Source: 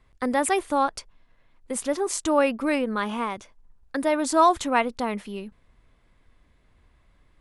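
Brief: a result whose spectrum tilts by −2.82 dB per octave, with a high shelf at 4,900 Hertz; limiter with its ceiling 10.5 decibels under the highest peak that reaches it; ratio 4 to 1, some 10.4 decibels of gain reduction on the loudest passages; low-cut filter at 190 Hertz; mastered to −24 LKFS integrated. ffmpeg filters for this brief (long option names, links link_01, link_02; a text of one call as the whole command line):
ffmpeg -i in.wav -af "highpass=190,highshelf=frequency=4900:gain=4.5,acompressor=threshold=-25dB:ratio=4,volume=8dB,alimiter=limit=-13.5dB:level=0:latency=1" out.wav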